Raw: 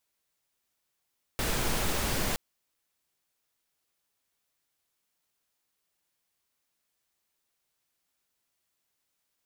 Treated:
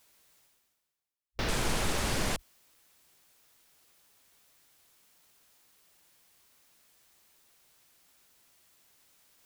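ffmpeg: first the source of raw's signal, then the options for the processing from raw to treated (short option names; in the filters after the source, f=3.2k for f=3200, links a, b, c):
-f lavfi -i "anoisesrc=c=pink:a=0.182:d=0.97:r=44100:seed=1"
-af "afwtdn=0.00708,areverse,acompressor=mode=upward:threshold=-40dB:ratio=2.5,areverse"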